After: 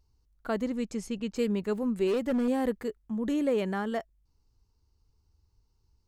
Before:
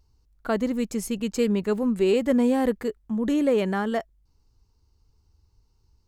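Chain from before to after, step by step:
0:00.64–0:01.35: low-pass filter 9,800 Hz → 5,100 Hz 12 dB per octave
0:02.07–0:02.48: hard clipping −18 dBFS, distortion −20 dB
level −5.5 dB

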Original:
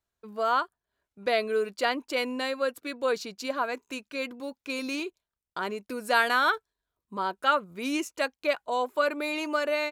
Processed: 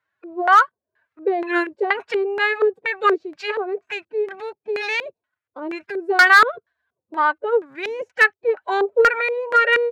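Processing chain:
high-pass filter 41 Hz 12 dB per octave
phase-vocoder pitch shift with formants kept +8 semitones
auto-filter low-pass square 2.1 Hz 460–1,700 Hz
spectral tilt +3.5 dB per octave
gain into a clipping stage and back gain 15 dB
level +8.5 dB

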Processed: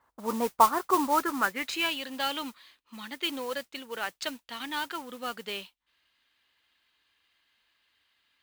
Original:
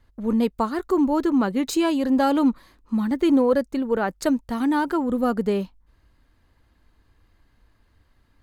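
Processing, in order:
band-pass filter sweep 1,000 Hz → 3,100 Hz, 0:00.93–0:02.02
noise that follows the level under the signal 14 dB
level +7.5 dB

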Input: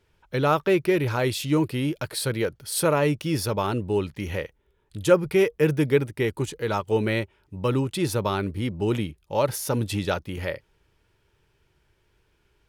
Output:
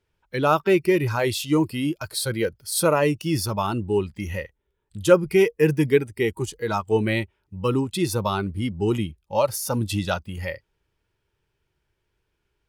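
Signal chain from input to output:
noise reduction from a noise print of the clip's start 11 dB
level +2.5 dB

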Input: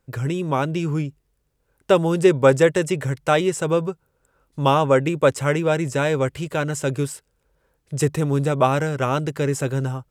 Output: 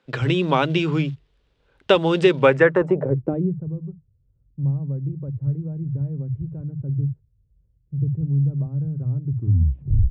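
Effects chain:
turntable brake at the end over 0.91 s
downward compressor 2 to 1, threshold −22 dBFS, peak gain reduction 7.5 dB
multiband delay without the direct sound highs, lows 50 ms, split 150 Hz
floating-point word with a short mantissa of 4 bits
low-pass filter sweep 3,500 Hz → 110 Hz, 0:02.37–0:03.66
level +5.5 dB

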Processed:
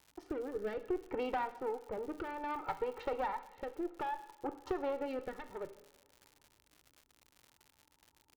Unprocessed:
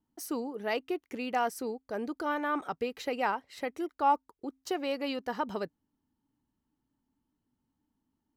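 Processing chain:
adaptive Wiener filter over 9 samples
flat-topped bell 940 Hz +9 dB 1.2 octaves
comb filter 2.2 ms, depth 78%
downward compressor 8 to 1, threshold −33 dBFS, peak gain reduction 23 dB
head-to-tape spacing loss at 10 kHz 36 dB
tube saturation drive 34 dB, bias 0.6
rotating-speaker cabinet horn 0.6 Hz
coupled-rooms reverb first 0.73 s, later 2.6 s, from −19 dB, DRR 9 dB
surface crackle 140 per second −54 dBFS
level +7 dB

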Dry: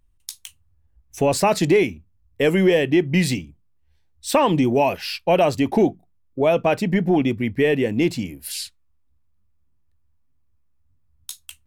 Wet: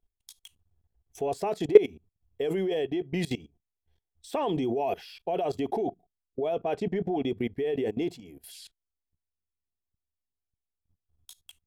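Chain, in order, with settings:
hollow resonant body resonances 420/700/3,300 Hz, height 14 dB, ringing for 30 ms
0:06.59–0:07.16: low-pass that shuts in the quiet parts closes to 2,100 Hz, open at −7 dBFS
output level in coarse steps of 20 dB
level −7.5 dB

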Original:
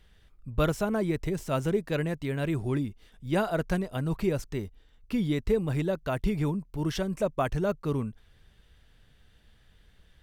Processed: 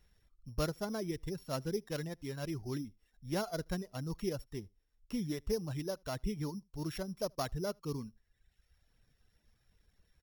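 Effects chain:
samples sorted by size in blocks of 8 samples
single-tap delay 77 ms −21.5 dB
reverb reduction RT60 1 s
level −8.5 dB

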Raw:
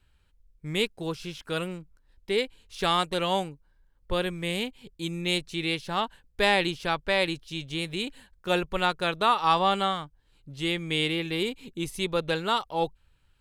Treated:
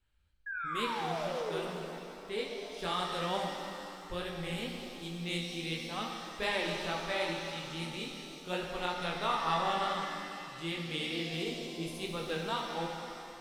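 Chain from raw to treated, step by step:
chorus effect 2.3 Hz, delay 16.5 ms, depth 6.9 ms
sound drawn into the spectrogram fall, 0:00.46–0:01.61, 360–1,700 Hz −31 dBFS
reverb with rising layers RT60 2.6 s, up +7 semitones, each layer −8 dB, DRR 1 dB
level −8 dB

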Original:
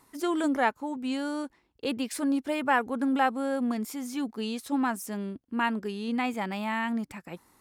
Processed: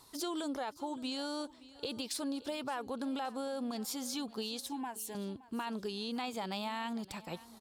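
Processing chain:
octave-band graphic EQ 250/2,000/4,000 Hz −7/−10/+11 dB
brickwall limiter −25.5 dBFS, peak gain reduction 10.5 dB
downward compressor 3 to 1, threshold −38 dBFS, peak gain reduction 6.5 dB
0:04.66–0:05.15: phaser with its sweep stopped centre 850 Hz, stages 8
repeating echo 570 ms, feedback 42%, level −19 dB
level +2 dB

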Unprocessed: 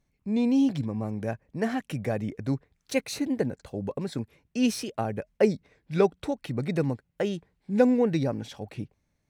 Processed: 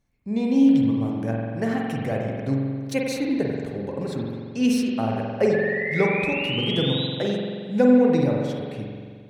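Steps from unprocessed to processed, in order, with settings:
sound drawn into the spectrogram rise, 0:05.53–0:07.07, 1,700–4,000 Hz −32 dBFS
spring reverb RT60 1.9 s, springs 44 ms, chirp 45 ms, DRR −1.5 dB

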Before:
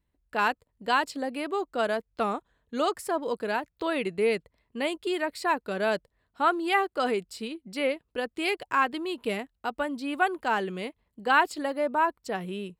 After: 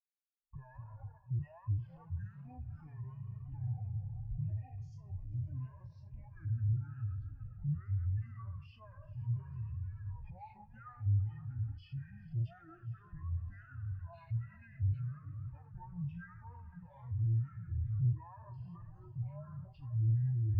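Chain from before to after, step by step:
peak hold with a decay on every bin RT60 0.56 s
camcorder AGC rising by 72 dB per second
guitar amp tone stack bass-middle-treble 6-0-2
change of speed 0.621×
delay with pitch and tempo change per echo 122 ms, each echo −3 semitones, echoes 3, each echo −6 dB
low shelf with overshoot 140 Hz +11 dB, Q 3
leveller curve on the samples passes 3
noise gate with hold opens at −24 dBFS
on a send: feedback delay with all-pass diffusion 481 ms, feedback 51%, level −9.5 dB
on the sum: flanger 1.1 Hz, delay 2.9 ms, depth 3.1 ms, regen +40%
brickwall limiter −32 dBFS, peak gain reduction 11 dB
every bin expanded away from the loudest bin 2.5 to 1
level +10.5 dB

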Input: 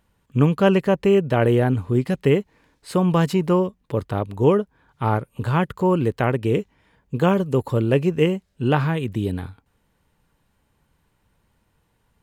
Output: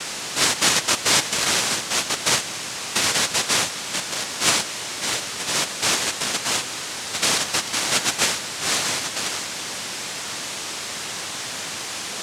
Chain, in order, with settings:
steady tone 630 Hz −25 dBFS
cochlear-implant simulation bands 1
level −3.5 dB

